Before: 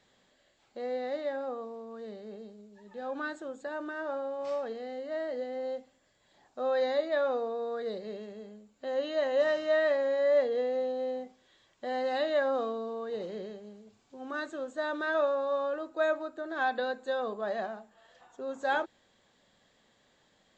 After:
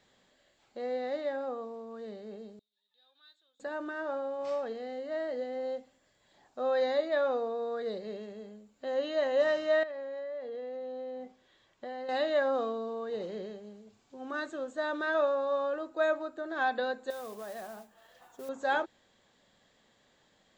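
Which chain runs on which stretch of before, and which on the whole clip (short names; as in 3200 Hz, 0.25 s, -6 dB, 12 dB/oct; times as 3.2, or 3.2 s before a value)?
2.59–3.6 band-pass 3700 Hz, Q 13 + modulation noise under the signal 30 dB
9.83–12.09 high shelf 5500 Hz -8 dB + compressor 10:1, threshold -37 dBFS
17.1–18.49 compressor 3:1, threshold -41 dBFS + modulation noise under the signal 14 dB
whole clip: dry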